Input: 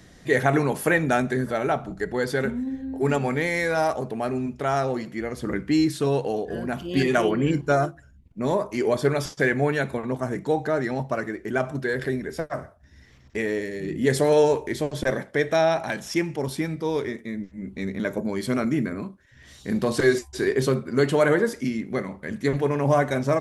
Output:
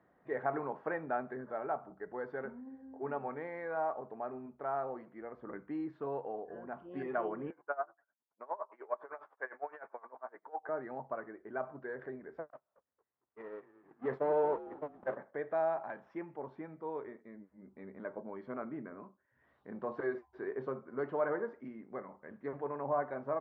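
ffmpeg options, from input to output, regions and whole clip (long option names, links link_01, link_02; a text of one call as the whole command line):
ffmpeg -i in.wav -filter_complex "[0:a]asettb=1/sr,asplit=3[link_01][link_02][link_03];[link_01]atrim=end=7.504[link_04];[link_02]atrim=start=7.5:end=10.69,asetpts=PTS-STARTPTS,afade=type=in:duration=0.004:curve=qsin,afade=type=out:start_time=3.186:duration=0.004:curve=qsin,acontrast=68,highpass=770,lowpass=2100,aeval=exprs='val(0)*pow(10,-22*(0.5-0.5*cos(2*PI*9.8*n/s))/20)':channel_layout=same[link_05];[link_03]atrim=start=10.686[link_06];[link_04][link_05]acrossfade=duration=0.004:curve1=hsin:curve2=qsin[link_07];[link_07][link_06]acrossfade=duration=0.004:curve1=qsin:curve2=hsin,asettb=1/sr,asplit=3[link_08][link_09][link_10];[link_08]atrim=end=12.504[link_11];[link_09]atrim=start=12.5:end=15.17,asetpts=PTS-STARTPTS,afade=type=in:duration=0.004:curve=qsin,afade=type=out:start_time=2.666:duration=0.004:curve=qsin,aeval=exprs='val(0)+0.5*0.075*sgn(val(0))':channel_layout=same,agate=range=-47dB:threshold=-21dB:ratio=16:release=100:detection=peak,asplit=5[link_12][link_13][link_14][link_15][link_16];[link_13]adelay=227,afreqshift=-90,volume=-16dB[link_17];[link_14]adelay=454,afreqshift=-180,volume=-23.7dB[link_18];[link_15]adelay=681,afreqshift=-270,volume=-31.5dB[link_19];[link_16]adelay=908,afreqshift=-360,volume=-39.2dB[link_20];[link_12][link_17][link_18][link_19][link_20]amix=inputs=5:normalize=0,atrim=end_sample=117747[link_21];[link_10]atrim=start=15.166[link_22];[link_11][link_21]acrossfade=duration=0.004:curve1=hsin:curve2=qsin[link_23];[link_23][link_22]acrossfade=duration=0.004:curve1=qsin:curve2=hsin,lowpass=frequency=1100:width=0.5412,lowpass=frequency=1100:width=1.3066,aderivative,volume=9dB" out.wav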